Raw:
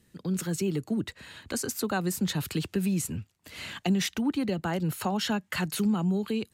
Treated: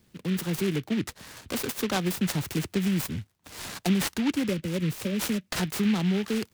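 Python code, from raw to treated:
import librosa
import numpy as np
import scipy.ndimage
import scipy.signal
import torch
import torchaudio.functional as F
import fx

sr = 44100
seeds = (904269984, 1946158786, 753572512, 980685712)

y = fx.spec_erase(x, sr, start_s=4.48, length_s=1.03, low_hz=620.0, high_hz=2100.0)
y = fx.noise_mod_delay(y, sr, seeds[0], noise_hz=2300.0, depth_ms=0.11)
y = F.gain(torch.from_numpy(y), 1.5).numpy()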